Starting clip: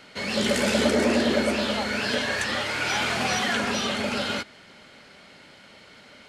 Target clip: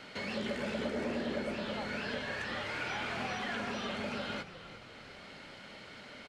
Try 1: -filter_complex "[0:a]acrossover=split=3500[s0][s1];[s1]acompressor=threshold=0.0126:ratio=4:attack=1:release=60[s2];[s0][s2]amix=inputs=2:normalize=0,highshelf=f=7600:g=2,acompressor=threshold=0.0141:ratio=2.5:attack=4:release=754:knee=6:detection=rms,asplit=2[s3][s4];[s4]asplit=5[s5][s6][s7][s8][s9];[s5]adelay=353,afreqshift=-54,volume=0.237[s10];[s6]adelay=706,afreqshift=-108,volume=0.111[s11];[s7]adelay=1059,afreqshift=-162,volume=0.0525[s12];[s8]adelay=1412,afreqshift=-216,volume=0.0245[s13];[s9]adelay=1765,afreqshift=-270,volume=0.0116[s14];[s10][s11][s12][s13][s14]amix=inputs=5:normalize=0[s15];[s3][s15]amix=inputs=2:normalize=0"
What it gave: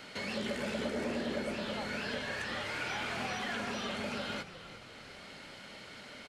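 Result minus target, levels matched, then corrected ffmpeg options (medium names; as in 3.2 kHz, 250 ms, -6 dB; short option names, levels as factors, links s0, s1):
8 kHz band +4.5 dB
-filter_complex "[0:a]acrossover=split=3500[s0][s1];[s1]acompressor=threshold=0.0126:ratio=4:attack=1:release=60[s2];[s0][s2]amix=inputs=2:normalize=0,highshelf=f=7600:g=-9.5,acompressor=threshold=0.0141:ratio=2.5:attack=4:release=754:knee=6:detection=rms,asplit=2[s3][s4];[s4]asplit=5[s5][s6][s7][s8][s9];[s5]adelay=353,afreqshift=-54,volume=0.237[s10];[s6]adelay=706,afreqshift=-108,volume=0.111[s11];[s7]adelay=1059,afreqshift=-162,volume=0.0525[s12];[s8]adelay=1412,afreqshift=-216,volume=0.0245[s13];[s9]adelay=1765,afreqshift=-270,volume=0.0116[s14];[s10][s11][s12][s13][s14]amix=inputs=5:normalize=0[s15];[s3][s15]amix=inputs=2:normalize=0"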